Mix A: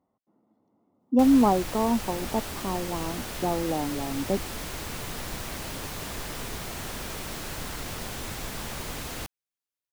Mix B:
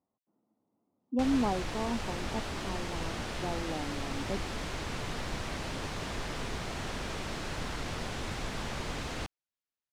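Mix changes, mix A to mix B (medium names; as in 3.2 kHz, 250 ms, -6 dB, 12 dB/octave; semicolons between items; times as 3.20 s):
speech -9.5 dB; master: add distance through air 81 m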